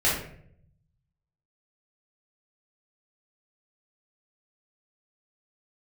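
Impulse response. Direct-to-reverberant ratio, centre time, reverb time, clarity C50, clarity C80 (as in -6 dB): -7.0 dB, 45 ms, 0.65 s, 2.5 dB, 7.5 dB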